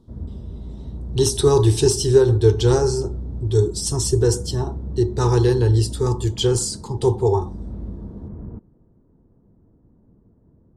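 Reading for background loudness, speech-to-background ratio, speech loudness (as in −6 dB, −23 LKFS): −33.0 LKFS, 14.0 dB, −19.0 LKFS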